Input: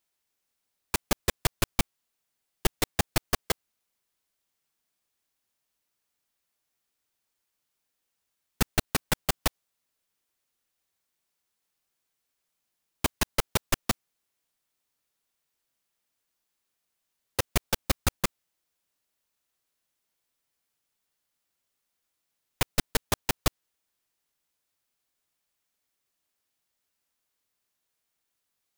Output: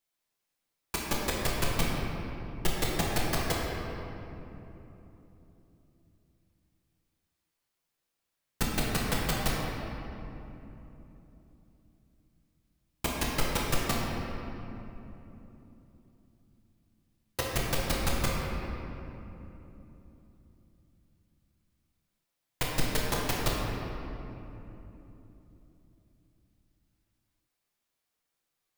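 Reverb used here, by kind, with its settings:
rectangular room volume 180 cubic metres, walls hard, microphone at 0.76 metres
level −6 dB

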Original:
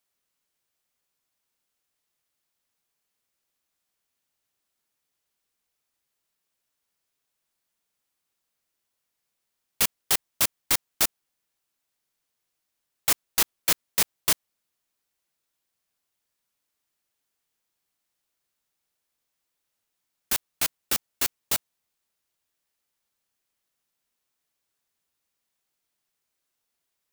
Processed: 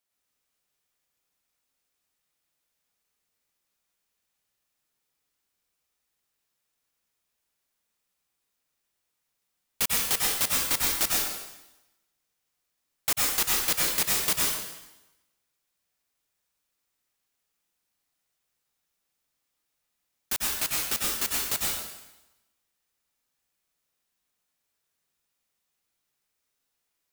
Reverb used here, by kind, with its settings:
dense smooth reverb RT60 0.98 s, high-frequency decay 0.95×, pre-delay 85 ms, DRR −3.5 dB
level −4 dB

